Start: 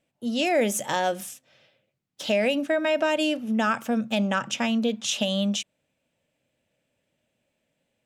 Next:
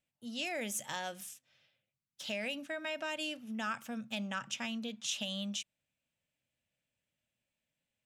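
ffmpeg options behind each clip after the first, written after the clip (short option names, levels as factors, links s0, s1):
-af "equalizer=f=430:w=0.54:g=-11,volume=0.376"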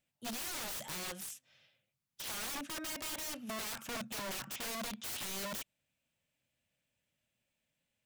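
-af "aeval=exprs='(mod(89.1*val(0)+1,2)-1)/89.1':c=same,volume=1.41"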